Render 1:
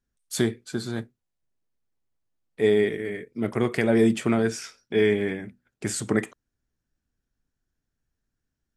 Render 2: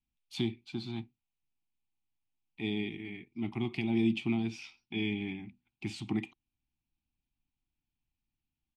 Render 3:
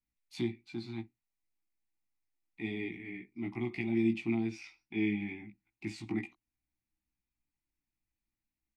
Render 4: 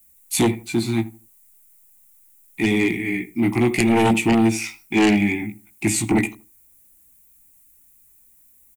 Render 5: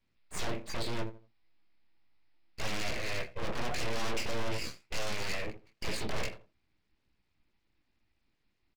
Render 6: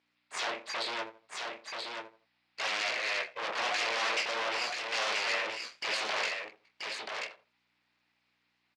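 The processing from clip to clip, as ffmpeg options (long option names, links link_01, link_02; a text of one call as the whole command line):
ffmpeg -i in.wav -filter_complex "[0:a]firequalizer=gain_entry='entry(340,0);entry(500,-30);entry(790,5);entry(1600,-17);entry(2400,10);entry(7300,-18)':delay=0.05:min_phase=1,acrossover=split=700|2600[link_01][link_02][link_03];[link_02]acompressor=threshold=-43dB:ratio=6[link_04];[link_01][link_04][link_03]amix=inputs=3:normalize=0,volume=-7dB" out.wav
ffmpeg -i in.wav -af "equalizer=frequency=200:width_type=o:width=1.3:gain=-8,flanger=delay=16.5:depth=2.1:speed=0.29,equalizer=frequency=200:width_type=o:width=0.33:gain=11,equalizer=frequency=315:width_type=o:width=0.33:gain=9,equalizer=frequency=2000:width_type=o:width=0.33:gain=9,equalizer=frequency=3150:width_type=o:width=0.33:gain=-10" out.wav
ffmpeg -i in.wav -filter_complex "[0:a]aeval=exprs='0.112*sin(PI/2*2.82*val(0)/0.112)':channel_layout=same,aexciter=amount=6.6:drive=7.8:freq=7000,asplit=2[link_01][link_02];[link_02]adelay=80,lowpass=frequency=1200:poles=1,volume=-17dB,asplit=2[link_03][link_04];[link_04]adelay=80,lowpass=frequency=1200:poles=1,volume=0.27,asplit=2[link_05][link_06];[link_06]adelay=80,lowpass=frequency=1200:poles=1,volume=0.27[link_07];[link_01][link_03][link_05][link_07]amix=inputs=4:normalize=0,volume=7dB" out.wav
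ffmpeg -i in.wav -filter_complex "[0:a]aresample=11025,asoftclip=type=hard:threshold=-23dB,aresample=44100,asplit=2[link_01][link_02];[link_02]adelay=27,volume=-7.5dB[link_03];[link_01][link_03]amix=inputs=2:normalize=0,aeval=exprs='abs(val(0))':channel_layout=same,volume=-5.5dB" out.wav
ffmpeg -i in.wav -af "aeval=exprs='val(0)+0.000708*(sin(2*PI*60*n/s)+sin(2*PI*2*60*n/s)/2+sin(2*PI*3*60*n/s)/3+sin(2*PI*4*60*n/s)/4+sin(2*PI*5*60*n/s)/5)':channel_layout=same,highpass=770,lowpass=5100,aecho=1:1:982:0.596,volume=7dB" out.wav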